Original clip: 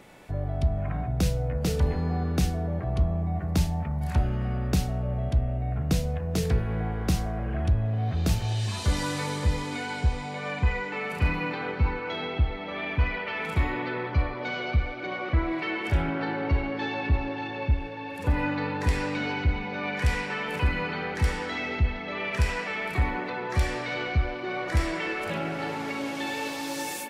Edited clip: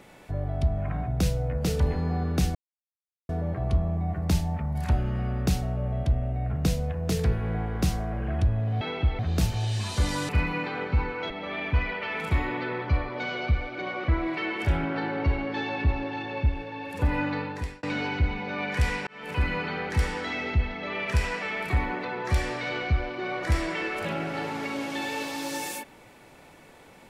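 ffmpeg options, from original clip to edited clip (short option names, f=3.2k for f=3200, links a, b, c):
-filter_complex "[0:a]asplit=8[a][b][c][d][e][f][g][h];[a]atrim=end=2.55,asetpts=PTS-STARTPTS,afade=t=out:st=2.546:d=0.004:c=hsin,apad=pad_dur=0.74[i];[b]atrim=start=2.55:end=8.072,asetpts=PTS-STARTPTS,afade=t=in:d=0.004:c=hsin[j];[c]atrim=start=12.168:end=12.552[k];[d]atrim=start=8.068:end=9.172[l];[e]atrim=start=11.158:end=12.172[m];[f]atrim=start=12.548:end=19.08,asetpts=PTS-STARTPTS,afade=t=out:st=6.022:d=0.51[n];[g]atrim=start=19.08:end=20.32,asetpts=PTS-STARTPTS,afade=t=in:d=0.004:c=hsin,afade=t=out:st=1.236:d=0.004:c=hsin[o];[h]atrim=start=20.32,asetpts=PTS-STARTPTS,afade=t=in:d=0.38[p];[i][j]concat=n=2:v=0:a=1[q];[q][k]acrossfade=d=0.004:c1=hsin:c2=hsin[r];[r][l]acrossfade=d=0.004:c1=hsin:c2=hsin[s];[s][m]acrossfade=d=0.004:c1=hsin:c2=hsin[t];[n][o][p]concat=n=3:v=0:a=1[u];[t][u]acrossfade=d=0.004:c1=hsin:c2=hsin"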